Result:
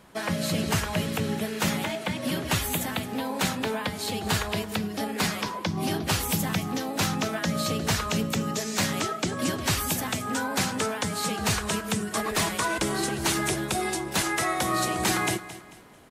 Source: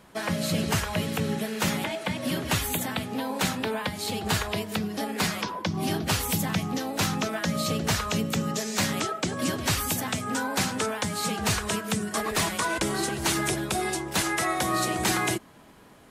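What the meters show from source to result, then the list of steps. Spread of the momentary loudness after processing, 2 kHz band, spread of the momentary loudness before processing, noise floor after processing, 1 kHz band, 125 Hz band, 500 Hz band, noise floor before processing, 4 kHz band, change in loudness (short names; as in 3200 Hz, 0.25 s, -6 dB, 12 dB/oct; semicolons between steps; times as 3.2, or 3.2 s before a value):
4 LU, 0.0 dB, 4 LU, -41 dBFS, 0.0 dB, 0.0 dB, 0.0 dB, -51 dBFS, 0.0 dB, 0.0 dB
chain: feedback echo 0.221 s, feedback 35%, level -15 dB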